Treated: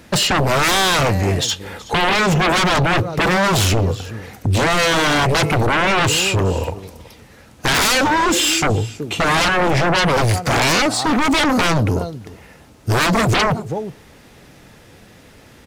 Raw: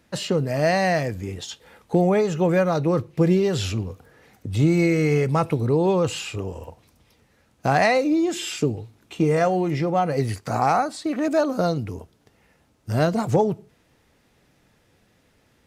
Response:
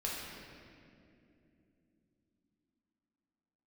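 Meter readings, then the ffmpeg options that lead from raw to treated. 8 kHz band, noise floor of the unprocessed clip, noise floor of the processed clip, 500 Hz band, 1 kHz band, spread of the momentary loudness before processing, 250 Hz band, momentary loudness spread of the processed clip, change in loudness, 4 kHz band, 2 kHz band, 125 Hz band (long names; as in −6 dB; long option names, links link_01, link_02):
+15.0 dB, −62 dBFS, −46 dBFS, +1.5 dB, +7.5 dB, 13 LU, +2.5 dB, 10 LU, +5.5 dB, +16.5 dB, +13.0 dB, +5.0 dB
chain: -af "aecho=1:1:374:0.0841,aeval=exprs='0.447*sin(PI/2*7.94*val(0)/0.447)':channel_layout=same,volume=-5.5dB"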